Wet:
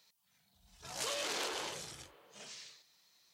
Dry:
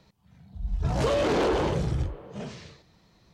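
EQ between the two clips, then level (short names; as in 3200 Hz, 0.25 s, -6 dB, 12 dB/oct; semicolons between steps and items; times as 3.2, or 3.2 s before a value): differentiator; +4.0 dB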